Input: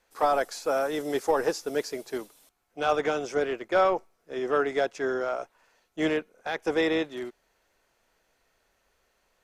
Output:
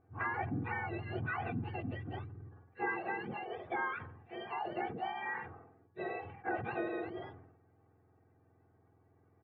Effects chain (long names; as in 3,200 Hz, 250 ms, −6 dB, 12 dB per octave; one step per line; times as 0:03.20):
frequency axis turned over on the octave scale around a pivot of 1,100 Hz
comb filter 2.6 ms, depth 63%
downward compressor, threshold −29 dBFS, peak gain reduction 10.5 dB
low-pass filter 1,700 Hz 24 dB per octave
level that may fall only so fast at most 63 dB per second
level −2 dB